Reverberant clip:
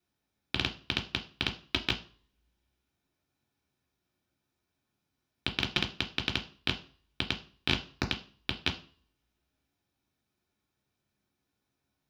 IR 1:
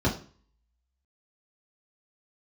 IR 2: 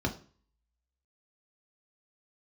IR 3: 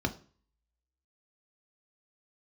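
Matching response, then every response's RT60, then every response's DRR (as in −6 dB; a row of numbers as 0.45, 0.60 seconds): 2; 0.40, 0.40, 0.40 seconds; −7.5, 1.0, 5.0 decibels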